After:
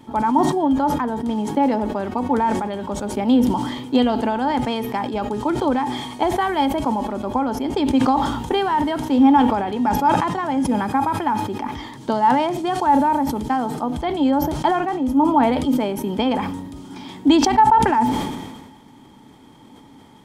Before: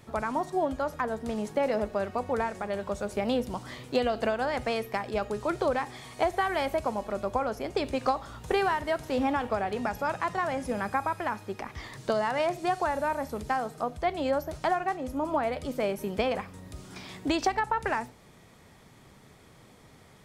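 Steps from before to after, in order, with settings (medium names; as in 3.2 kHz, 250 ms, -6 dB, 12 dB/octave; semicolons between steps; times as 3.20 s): small resonant body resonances 270/870/3200 Hz, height 17 dB, ringing for 40 ms; decay stretcher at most 41 dB/s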